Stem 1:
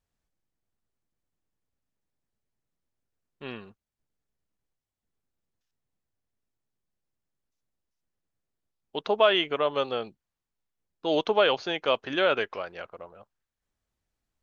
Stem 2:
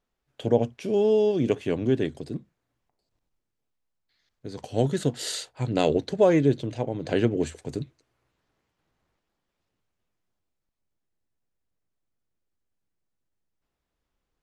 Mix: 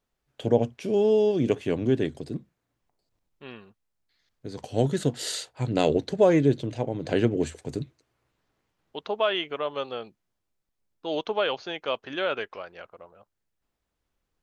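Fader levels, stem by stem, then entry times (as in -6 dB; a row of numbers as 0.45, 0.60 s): -4.0, 0.0 dB; 0.00, 0.00 s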